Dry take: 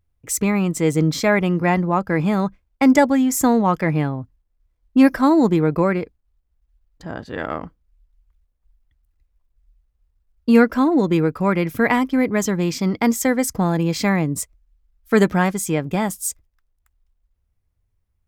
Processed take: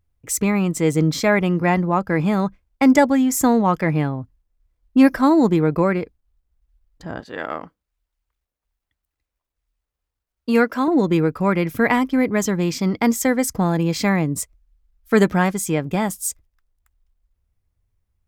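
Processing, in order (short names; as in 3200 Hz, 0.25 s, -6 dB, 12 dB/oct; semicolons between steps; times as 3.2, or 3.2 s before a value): 7.2–10.88 HPF 370 Hz 6 dB/oct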